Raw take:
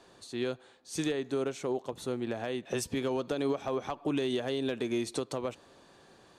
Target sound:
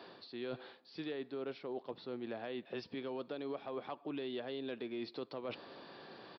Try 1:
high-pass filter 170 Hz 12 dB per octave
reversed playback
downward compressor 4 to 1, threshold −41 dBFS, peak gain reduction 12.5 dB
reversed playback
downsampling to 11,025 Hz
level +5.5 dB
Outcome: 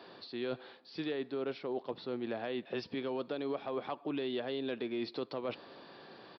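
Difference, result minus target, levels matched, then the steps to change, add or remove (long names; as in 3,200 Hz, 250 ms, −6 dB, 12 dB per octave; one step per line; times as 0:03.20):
downward compressor: peak gain reduction −5 dB
change: downward compressor 4 to 1, threshold −47.5 dBFS, peak gain reduction 17 dB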